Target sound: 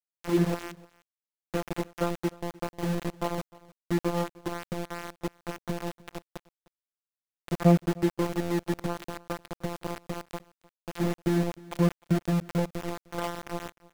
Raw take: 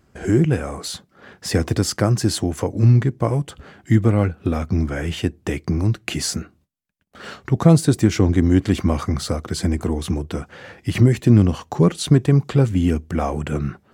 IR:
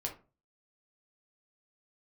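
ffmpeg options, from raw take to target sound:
-filter_complex "[0:a]lowpass=f=1.5k:w=0.5412,lowpass=f=1.5k:w=1.3066,lowshelf=f=140:g=-8,afftfilt=real='hypot(re,im)*cos(PI*b)':imag='0':win_size=1024:overlap=0.75,aeval=exprs='val(0)*gte(abs(val(0)),0.0631)':c=same,asplit=2[a][b];[b]aecho=0:1:305:0.075[c];[a][c]amix=inputs=2:normalize=0,volume=-4dB"

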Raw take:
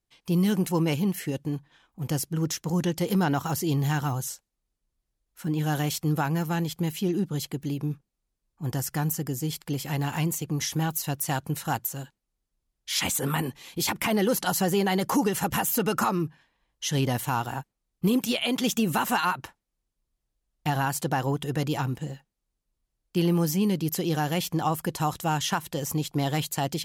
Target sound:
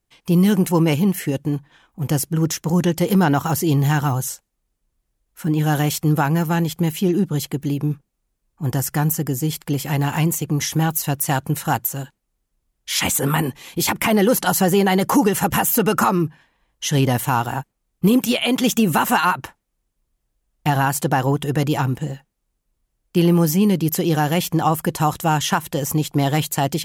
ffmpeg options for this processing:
-af "equalizer=f=4.4k:t=o:w=1:g=-4,volume=8dB"

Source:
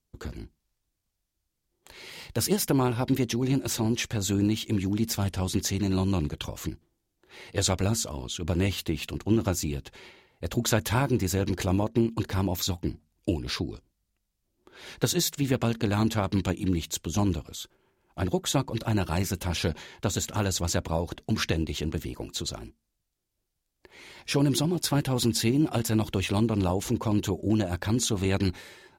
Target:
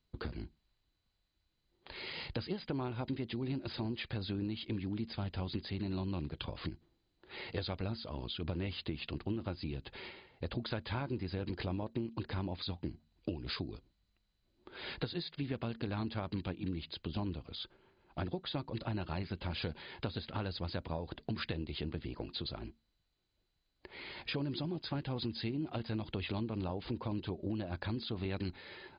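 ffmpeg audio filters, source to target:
-af "acompressor=threshold=-38dB:ratio=4,volume=1dB" -ar 16000 -c:a mp2 -b:a 64k

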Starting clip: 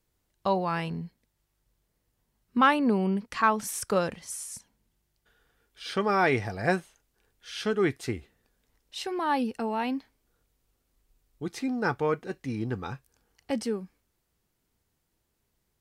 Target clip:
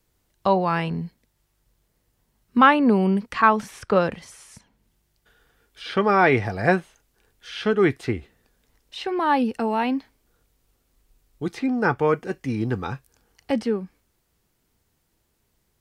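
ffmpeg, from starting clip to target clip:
-filter_complex "[0:a]asettb=1/sr,asplit=3[a][b][c];[a]atrim=end=11.664[d];[b]atrim=start=11.66:end=12.49,asetpts=PTS-STARTPTS,afade=t=in:d=0.004:c=qsin,afade=t=out:st=0.826:d=0.004:c=qsin,bandreject=f=3.9k:w=6.3[e];[c]atrim=start=12.486[f];[d][e]acrossfade=d=0.004:c1=hsin:c2=qsin[g];[g][f]acrossfade=d=0.004:c1=qsin:c2=hsin,acrossover=split=410|3800[h][i][j];[j]acompressor=threshold=-57dB:ratio=6[k];[h][i][k]amix=inputs=3:normalize=0,volume=6.5dB"

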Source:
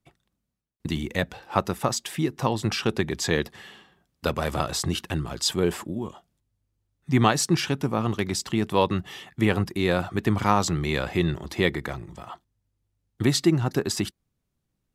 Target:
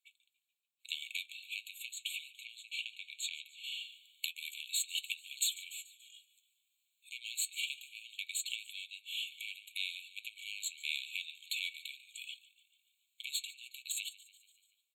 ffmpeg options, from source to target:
-filter_complex "[0:a]asettb=1/sr,asplit=3[a][b][c];[a]atrim=end=1.904[d];[b]atrim=start=1.9:end=3.64,asetpts=PTS-STARTPTS,afade=t=in:d=0.004:c=qsin,afade=t=out:st=1.736:d=0.004:c=qsin,highshelf=f=3.8k:g=-10[e];[c]atrim=start=3.636[f];[d][e]acrossfade=d=0.004:c1=hsin:c2=qsin[g];[g][f]acrossfade=d=0.004:c1=qsin:c2=hsin,aeval=exprs='(tanh(7.94*val(0)+0.8)-tanh(0.8))/7.94':c=same,dynaudnorm=f=970:g=3:m=11.5dB,flanger=delay=5.9:depth=4:regen=-63:speed=0.23:shape=triangular,acompressor=threshold=-39dB:ratio=6,asplit=2[h][i];[i]asplit=5[j][k][l][m][n];[j]adelay=144,afreqshift=62,volume=-19dB[o];[k]adelay=288,afreqshift=124,volume=-23.6dB[p];[l]adelay=432,afreqshift=186,volume=-28.2dB[q];[m]adelay=576,afreqshift=248,volume=-32.7dB[r];[n]adelay=720,afreqshift=310,volume=-37.3dB[s];[o][p][q][r][s]amix=inputs=5:normalize=0[t];[h][t]amix=inputs=2:normalize=0,afftfilt=real='re*eq(mod(floor(b*sr/1024/2200),2),1)':imag='im*eq(mod(floor(b*sr/1024/2200),2),1)':win_size=1024:overlap=0.75,volume=12dB"

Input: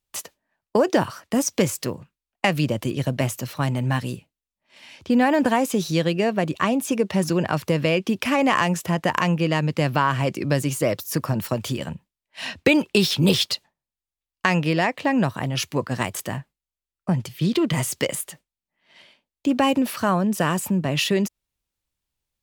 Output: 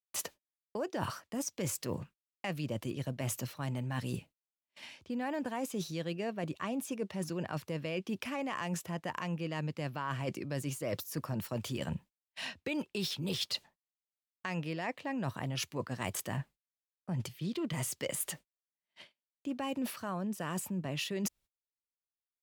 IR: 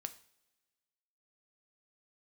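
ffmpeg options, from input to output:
-af "agate=range=-33dB:threshold=-49dB:ratio=16:detection=peak,areverse,acompressor=threshold=-33dB:ratio=12,areverse"

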